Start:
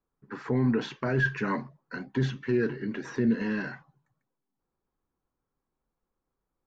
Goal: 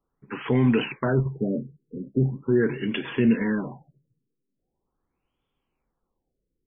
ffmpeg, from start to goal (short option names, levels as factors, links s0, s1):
-af "aexciter=amount=7.8:drive=4.4:freq=2500,acrusher=bits=8:mode=log:mix=0:aa=0.000001,afftfilt=real='re*lt(b*sr/1024,490*pow(3600/490,0.5+0.5*sin(2*PI*0.41*pts/sr)))':imag='im*lt(b*sr/1024,490*pow(3600/490,0.5+0.5*sin(2*PI*0.41*pts/sr)))':win_size=1024:overlap=0.75,volume=1.78"